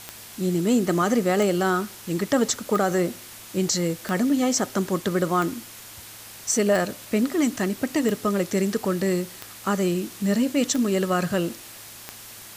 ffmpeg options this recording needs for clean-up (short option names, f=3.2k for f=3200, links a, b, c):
-af "adeclick=t=4,bandreject=f=109.2:t=h:w=4,bandreject=f=218.4:t=h:w=4,bandreject=f=327.6:t=h:w=4,afwtdn=0.0089"